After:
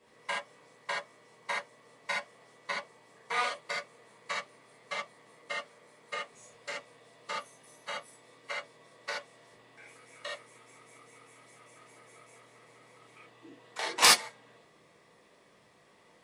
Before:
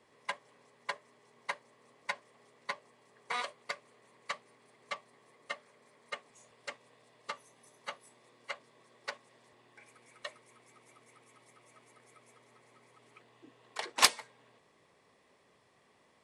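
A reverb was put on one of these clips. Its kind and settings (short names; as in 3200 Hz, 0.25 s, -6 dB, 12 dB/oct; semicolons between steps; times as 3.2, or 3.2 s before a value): non-linear reverb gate 0.1 s flat, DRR -6.5 dB; gain -2 dB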